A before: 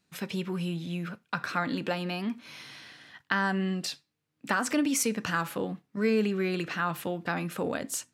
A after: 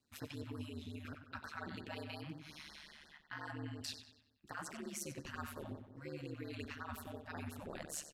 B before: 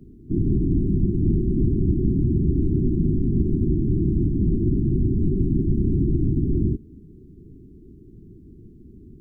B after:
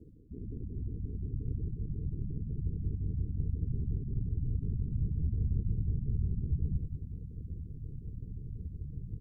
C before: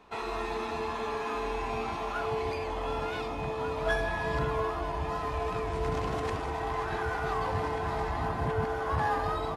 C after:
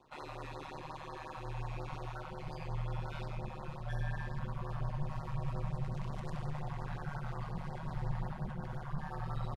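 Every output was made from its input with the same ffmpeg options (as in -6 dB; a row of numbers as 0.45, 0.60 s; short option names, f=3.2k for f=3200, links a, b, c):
-filter_complex "[0:a]areverse,acompressor=threshold=-33dB:ratio=12,areverse,asplit=2[a][b];[b]adelay=94,lowpass=f=4.3k:p=1,volume=-8dB,asplit=2[c][d];[d]adelay=94,lowpass=f=4.3k:p=1,volume=0.54,asplit=2[e][f];[f]adelay=94,lowpass=f=4.3k:p=1,volume=0.54,asplit=2[g][h];[h]adelay=94,lowpass=f=4.3k:p=1,volume=0.54,asplit=2[i][j];[j]adelay=94,lowpass=f=4.3k:p=1,volume=0.54,asplit=2[k][l];[l]adelay=94,lowpass=f=4.3k:p=1,volume=0.54[m];[a][c][e][g][i][k][m]amix=inputs=7:normalize=0,asubboost=boost=7.5:cutoff=81,aeval=exprs='val(0)*sin(2*PI*74*n/s)':c=same,afftfilt=real='re*(1-between(b*sr/1024,340*pow(2900/340,0.5+0.5*sin(2*PI*5.6*pts/sr))/1.41,340*pow(2900/340,0.5+0.5*sin(2*PI*5.6*pts/sr))*1.41))':imag='im*(1-between(b*sr/1024,340*pow(2900/340,0.5+0.5*sin(2*PI*5.6*pts/sr))/1.41,340*pow(2900/340,0.5+0.5*sin(2*PI*5.6*pts/sr))*1.41))':win_size=1024:overlap=0.75,volume=-4.5dB"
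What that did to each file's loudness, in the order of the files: -16.5, -14.5, -9.5 LU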